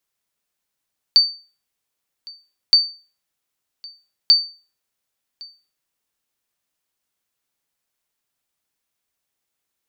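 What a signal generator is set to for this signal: sonar ping 4.58 kHz, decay 0.35 s, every 1.57 s, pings 3, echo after 1.11 s, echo -25 dB -4.5 dBFS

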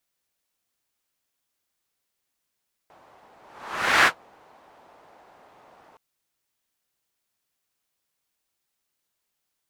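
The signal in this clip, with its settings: whoosh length 3.07 s, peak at 1.16 s, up 0.71 s, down 0.10 s, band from 790 Hz, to 1.7 kHz, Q 1.7, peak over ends 37 dB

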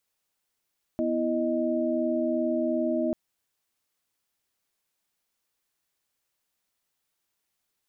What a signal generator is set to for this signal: chord B3/E4/D#5 sine, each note -28 dBFS 2.14 s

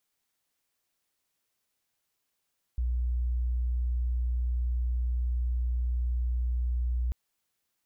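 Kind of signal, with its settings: tone sine 60.7 Hz -25.5 dBFS 4.34 s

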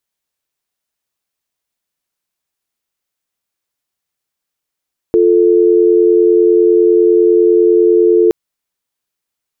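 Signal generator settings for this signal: call progress tone dial tone, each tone -9 dBFS 3.17 s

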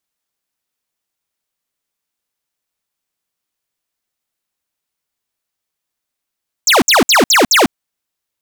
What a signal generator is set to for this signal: burst of laser zaps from 7.8 kHz, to 200 Hz, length 0.15 s square, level -9 dB, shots 5, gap 0.06 s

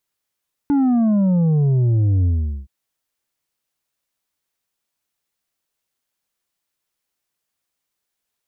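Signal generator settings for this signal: sub drop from 290 Hz, over 1.97 s, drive 5.5 dB, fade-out 0.42 s, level -14 dB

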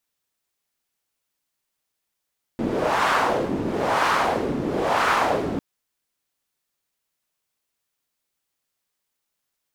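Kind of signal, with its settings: wind-like swept noise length 3.00 s, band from 280 Hz, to 1.2 kHz, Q 1.8, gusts 3, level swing 6 dB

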